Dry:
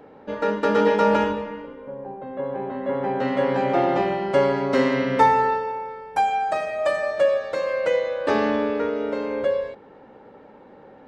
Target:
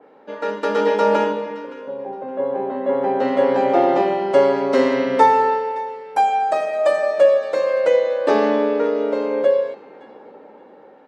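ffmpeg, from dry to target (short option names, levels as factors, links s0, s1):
-filter_complex "[0:a]highpass=300,acrossover=split=930[s0][s1];[s0]dynaudnorm=f=420:g=5:m=2.82[s2];[s1]asplit=2[s3][s4];[s4]adelay=568,lowpass=f=4600:p=1,volume=0.178,asplit=2[s5][s6];[s6]adelay=568,lowpass=f=4600:p=1,volume=0.32,asplit=2[s7][s8];[s8]adelay=568,lowpass=f=4600:p=1,volume=0.32[s9];[s3][s5][s7][s9]amix=inputs=4:normalize=0[s10];[s2][s10]amix=inputs=2:normalize=0,adynamicequalizer=threshold=0.0158:dfrequency=3000:dqfactor=0.7:tfrequency=3000:tqfactor=0.7:attack=5:release=100:ratio=0.375:range=2:mode=boostabove:tftype=highshelf,volume=0.891"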